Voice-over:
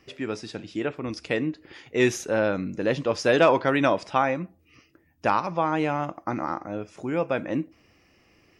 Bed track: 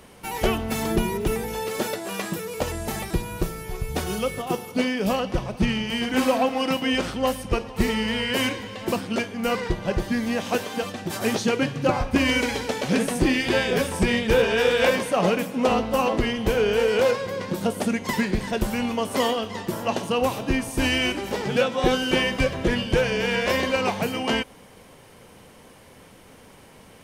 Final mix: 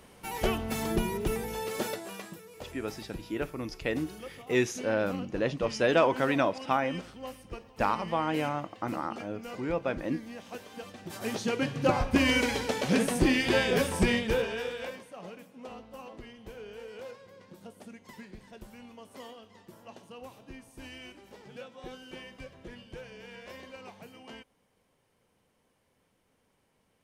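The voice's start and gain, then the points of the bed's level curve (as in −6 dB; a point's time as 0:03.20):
2.55 s, −5.0 dB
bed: 0:01.92 −6 dB
0:02.41 −18 dB
0:10.53 −18 dB
0:11.89 −3.5 dB
0:14.08 −3.5 dB
0:15.08 −23.5 dB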